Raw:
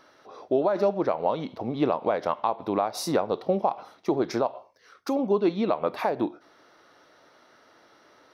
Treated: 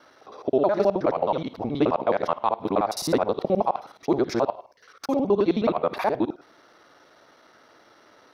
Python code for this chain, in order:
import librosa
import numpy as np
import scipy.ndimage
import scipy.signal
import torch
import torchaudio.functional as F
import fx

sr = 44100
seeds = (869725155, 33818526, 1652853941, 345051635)

y = fx.local_reverse(x, sr, ms=53.0)
y = y * 10.0 ** (2.5 / 20.0)